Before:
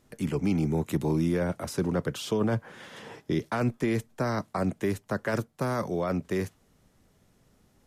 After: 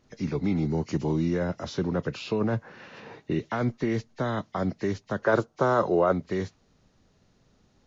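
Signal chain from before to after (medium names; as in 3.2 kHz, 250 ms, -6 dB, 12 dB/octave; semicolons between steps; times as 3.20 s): knee-point frequency compression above 1.8 kHz 1.5:1; time-frequency box 5.22–6.13 s, 310–1600 Hz +8 dB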